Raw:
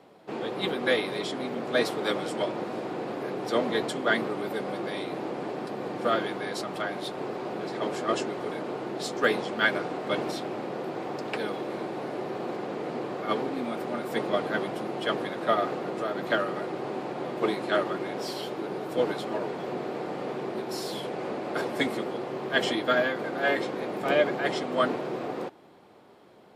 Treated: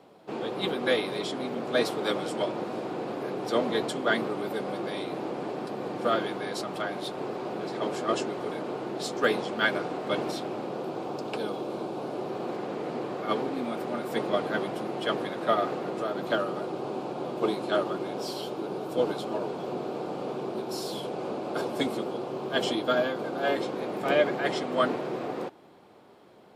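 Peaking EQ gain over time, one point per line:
peaking EQ 1.9 kHz 0.47 oct
10.32 s -4 dB
11.37 s -15 dB
11.92 s -15 dB
12.56 s -3.5 dB
15.86 s -3.5 dB
16.46 s -12 dB
23.43 s -12 dB
24.11 s -1.5 dB

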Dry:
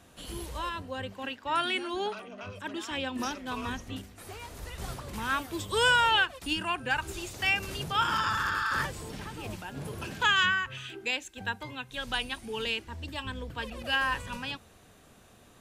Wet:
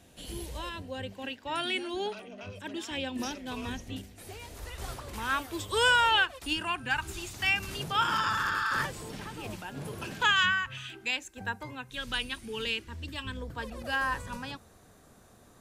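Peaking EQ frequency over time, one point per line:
peaking EQ -9 dB 0.74 oct
1.2 kHz
from 4.55 s 170 Hz
from 6.67 s 510 Hz
from 7.73 s 65 Hz
from 10.31 s 430 Hz
from 11.19 s 3.3 kHz
from 11.90 s 750 Hz
from 13.37 s 2.8 kHz

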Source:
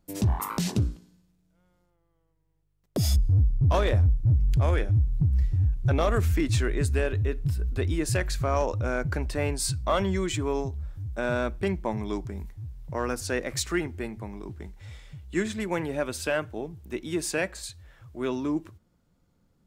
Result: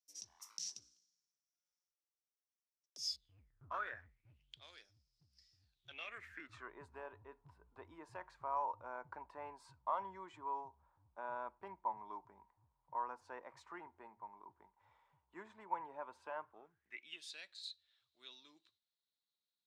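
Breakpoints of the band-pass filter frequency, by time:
band-pass filter, Q 9.8
3.04 s 5.7 kHz
3.69 s 1.2 kHz
4.89 s 5.1 kHz
5.58 s 5.1 kHz
6.73 s 950 Hz
16.43 s 950 Hz
17.33 s 3.9 kHz

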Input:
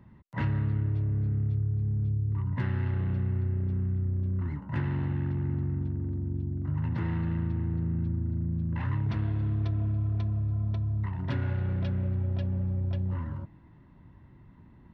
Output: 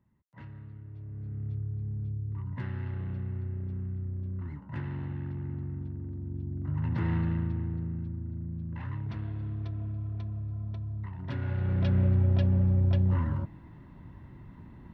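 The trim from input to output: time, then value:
0.84 s -17.5 dB
1.51 s -6 dB
6.15 s -6 dB
7.14 s +2 dB
8.10 s -6.5 dB
11.19 s -6.5 dB
11.98 s +5.5 dB

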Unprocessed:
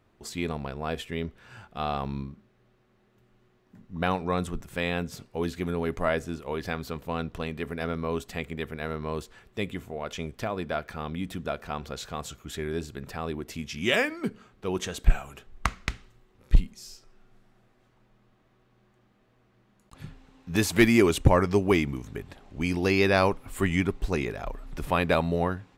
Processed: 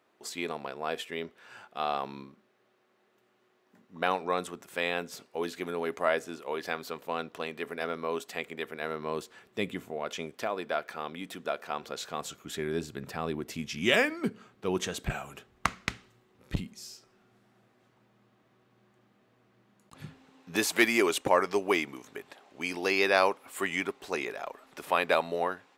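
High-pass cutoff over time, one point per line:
8.65 s 370 Hz
9.64 s 170 Hz
10.61 s 370 Hz
11.66 s 370 Hz
12.91 s 130 Hz
20.05 s 130 Hz
20.73 s 460 Hz

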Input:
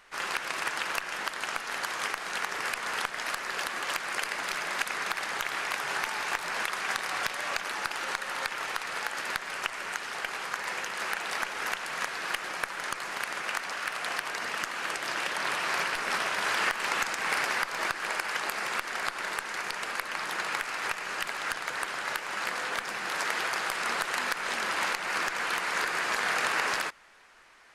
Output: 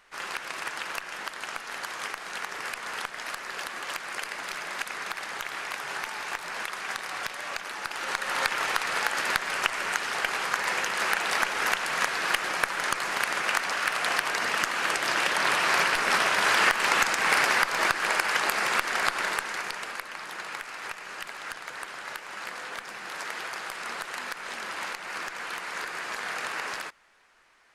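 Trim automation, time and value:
7.80 s -2.5 dB
8.39 s +6 dB
19.19 s +6 dB
20.16 s -5 dB

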